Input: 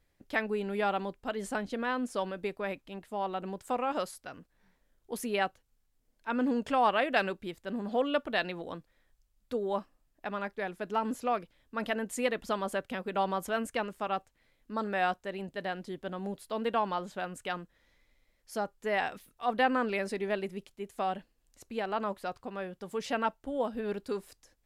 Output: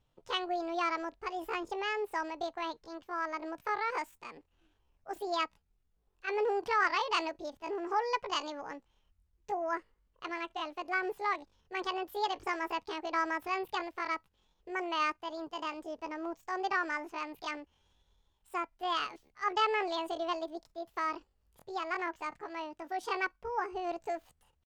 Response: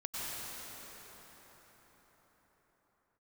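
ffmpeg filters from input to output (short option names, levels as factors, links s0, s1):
-af "aemphasis=mode=reproduction:type=75kf,asetrate=74167,aresample=44100,atempo=0.594604,volume=0.841"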